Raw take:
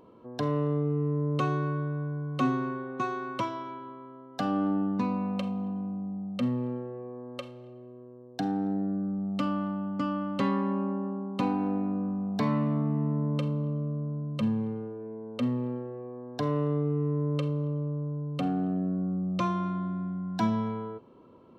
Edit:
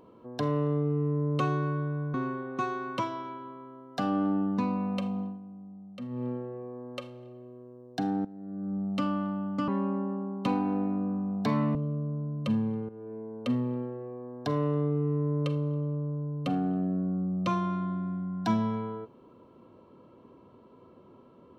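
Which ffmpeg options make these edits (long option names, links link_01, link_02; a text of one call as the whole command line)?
ffmpeg -i in.wav -filter_complex "[0:a]asplit=8[link_01][link_02][link_03][link_04][link_05][link_06][link_07][link_08];[link_01]atrim=end=2.142[link_09];[link_02]atrim=start=2.548:end=5.8,asetpts=PTS-STARTPTS,afade=type=out:start_time=3.062:duration=0.19:silence=0.281838[link_10];[link_03]atrim=start=5.8:end=6.49,asetpts=PTS-STARTPTS,volume=-11dB[link_11];[link_04]atrim=start=6.49:end=8.66,asetpts=PTS-STARTPTS,afade=type=in:duration=0.19:silence=0.281838,afade=type=out:start_time=2.166:duration=0.004:curve=hsin:silence=0.141254[link_12];[link_05]atrim=start=8.66:end=10.092,asetpts=PTS-STARTPTS,afade=type=in:duration=0.5:curve=qua:silence=0.141254[link_13];[link_06]atrim=start=10.618:end=12.692[link_14];[link_07]atrim=start=13.678:end=14.82,asetpts=PTS-STARTPTS,afade=type=out:start_time=1.138:duration=0.004:curve=hsin:silence=0.223872[link_15];[link_08]atrim=start=14.82,asetpts=PTS-STARTPTS,afade=type=in:duration=0.31:curve=qsin:silence=0.223872[link_16];[link_10][link_11][link_12][link_13]concat=n=4:v=0:a=1[link_17];[link_09][link_17]acrossfade=duration=0.004:curve1=hsin:curve2=hsin[link_18];[link_18][link_14]acrossfade=duration=0.004:curve1=hsin:curve2=hsin[link_19];[link_15][link_16]concat=n=2:v=0:a=1[link_20];[link_19][link_20]acrossfade=duration=0.004:curve1=hsin:curve2=hsin" out.wav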